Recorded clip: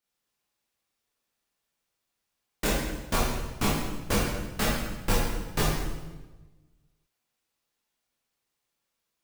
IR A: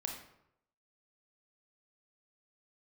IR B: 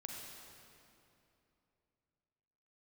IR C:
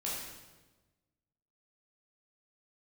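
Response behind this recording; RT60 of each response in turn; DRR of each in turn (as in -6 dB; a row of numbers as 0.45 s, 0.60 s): C; 0.80 s, 2.9 s, 1.2 s; 1.0 dB, -0.5 dB, -6.5 dB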